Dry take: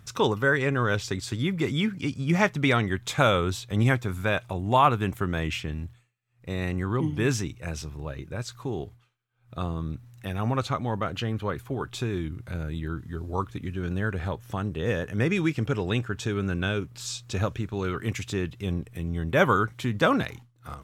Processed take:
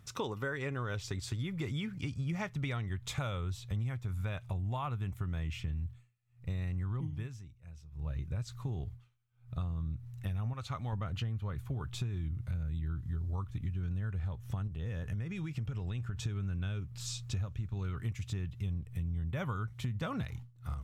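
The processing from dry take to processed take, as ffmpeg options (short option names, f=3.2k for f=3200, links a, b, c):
-filter_complex "[0:a]asettb=1/sr,asplit=3[a][b][c];[a]atrim=end=10.534[d];[b]atrim=start=10.53:end=10.93,asetpts=PTS-STARTPTS,afade=t=in:d=0.004:c=qsin,afade=t=out:st=0.396:d=0.004:c=qsin,lowshelf=f=460:g=-8.5[e];[c]atrim=start=10.926[f];[d][e]acrossfade=d=0.004:c1=hsin:c2=qsin[g];[g][f]acrossfade=d=0.004:c1=qsin:c2=hsin,asettb=1/sr,asplit=3[h][i][j];[h]atrim=end=14.674[k];[i]atrim=start=14.67:end=16.2,asetpts=PTS-STARTPTS,afade=t=in:d=0.004:c=qsin,afade=t=out:st=1.526:d=0.004:c=qsin,acompressor=threshold=-32dB:ratio=4:attack=3.2:release=140:knee=1:detection=peak[l];[j]atrim=start=16.196[m];[k][l]acrossfade=d=0.004:c1=hsin:c2=qsin[n];[n][m]acrossfade=d=0.004:c1=qsin:c2=hsin,asplit=3[o][p][q];[o]atrim=end=7.29,asetpts=PTS-STARTPTS,afade=t=out:st=7.03:d=0.26:silence=0.0944061[r];[p]atrim=start=7.29:end=7.91,asetpts=PTS-STARTPTS,volume=-20.5dB[s];[q]atrim=start=7.91,asetpts=PTS-STARTPTS,afade=t=in:d=0.26:silence=0.0944061[t];[r][s][t]concat=n=3:v=0:a=1,bandreject=f=1.6k:w=18,asubboost=boost=7.5:cutoff=120,acompressor=threshold=-26dB:ratio=10,volume=-6.5dB"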